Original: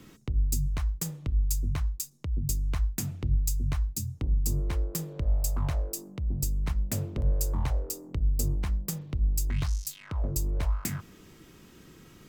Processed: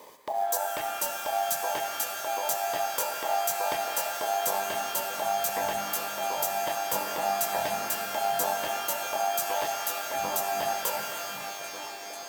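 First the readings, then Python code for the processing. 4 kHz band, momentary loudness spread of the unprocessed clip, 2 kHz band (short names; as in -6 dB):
+10.5 dB, 5 LU, +14.0 dB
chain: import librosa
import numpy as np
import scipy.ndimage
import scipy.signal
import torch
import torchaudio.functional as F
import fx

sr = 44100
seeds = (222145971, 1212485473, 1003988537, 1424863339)

y = fx.dereverb_blind(x, sr, rt60_s=1.8)
y = fx.highpass(y, sr, hz=64.0, slope=6)
y = fx.high_shelf(y, sr, hz=9400.0, db=7.5)
y = fx.hpss(y, sr, part='harmonic', gain_db=-4)
y = fx.transient(y, sr, attack_db=-6, sustain_db=-2)
y = y * np.sin(2.0 * np.pi * 740.0 * np.arange(len(y)) / sr)
y = fx.quant_companded(y, sr, bits=6)
y = fx.notch_comb(y, sr, f0_hz=1400.0)
y = fx.echo_stepped(y, sr, ms=748, hz=160.0, octaves=1.4, feedback_pct=70, wet_db=-3.5)
y = fx.rev_shimmer(y, sr, seeds[0], rt60_s=3.4, semitones=12, shimmer_db=-2, drr_db=4.0)
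y = F.gain(torch.from_numpy(y), 8.5).numpy()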